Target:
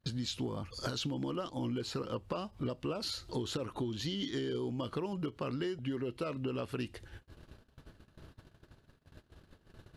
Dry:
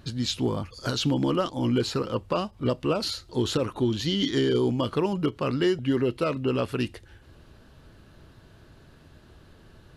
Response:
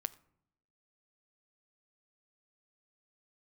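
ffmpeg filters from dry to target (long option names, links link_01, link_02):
-af "agate=range=-33dB:threshold=-49dB:ratio=16:detection=peak,acompressor=threshold=-36dB:ratio=6,volume=1.5dB"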